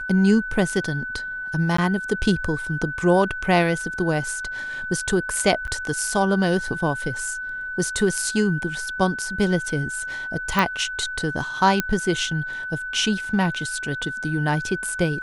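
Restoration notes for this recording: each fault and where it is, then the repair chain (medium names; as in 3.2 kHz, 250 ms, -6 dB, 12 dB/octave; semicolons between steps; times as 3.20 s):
whine 1.5 kHz -28 dBFS
1.77–1.78 s: dropout 14 ms
5.67–5.68 s: dropout 7.6 ms
10.59 s: pop
11.80 s: pop -5 dBFS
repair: de-click; band-stop 1.5 kHz, Q 30; interpolate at 1.77 s, 14 ms; interpolate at 5.67 s, 7.6 ms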